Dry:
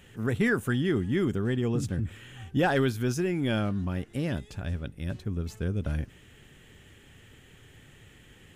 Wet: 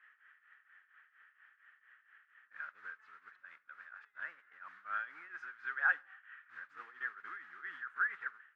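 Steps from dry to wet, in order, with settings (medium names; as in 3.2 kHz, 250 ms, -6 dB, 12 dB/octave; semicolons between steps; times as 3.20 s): reverse the whole clip; tremolo triangle 4.3 Hz, depth 85%; modulation noise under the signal 15 dB; Butterworth band-pass 1.5 kHz, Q 2.6; reverberation RT60 0.55 s, pre-delay 6 ms, DRR 18.5 dB; trim +4.5 dB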